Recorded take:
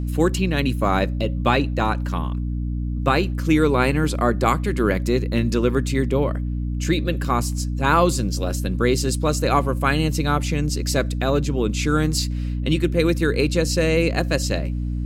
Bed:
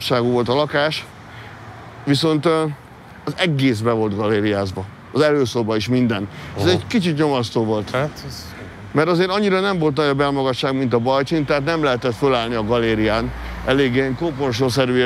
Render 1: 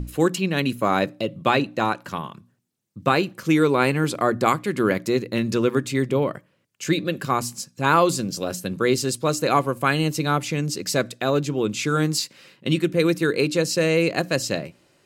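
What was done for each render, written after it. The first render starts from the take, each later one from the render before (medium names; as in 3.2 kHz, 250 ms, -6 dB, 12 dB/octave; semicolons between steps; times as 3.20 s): hum notches 60/120/180/240/300 Hz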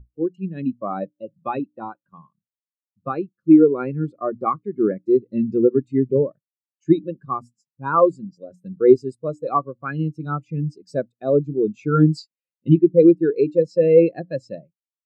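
level rider gain up to 9 dB; spectral contrast expander 2.5:1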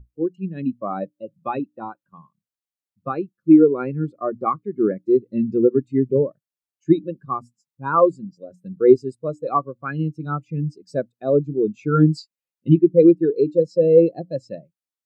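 13.25–14.36 s: high-order bell 1.8 kHz -15 dB 1.3 oct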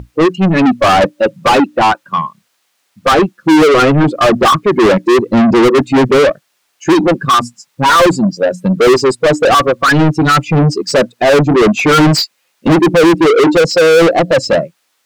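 overdrive pedal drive 43 dB, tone 4.2 kHz, clips at -1 dBFS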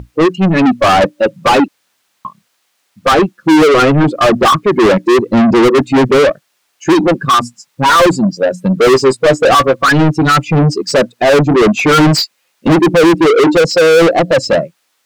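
1.68–2.25 s: room tone; 8.82–9.89 s: doubling 15 ms -9.5 dB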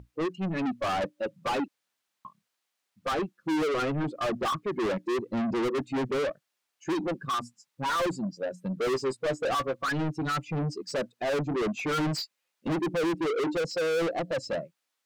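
trim -20 dB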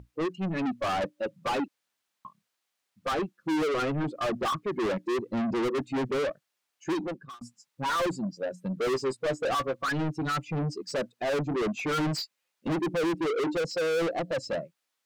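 6.93–7.41 s: fade out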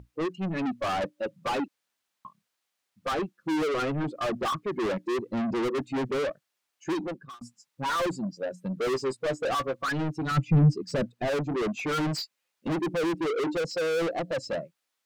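10.31–11.28 s: tone controls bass +14 dB, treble -3 dB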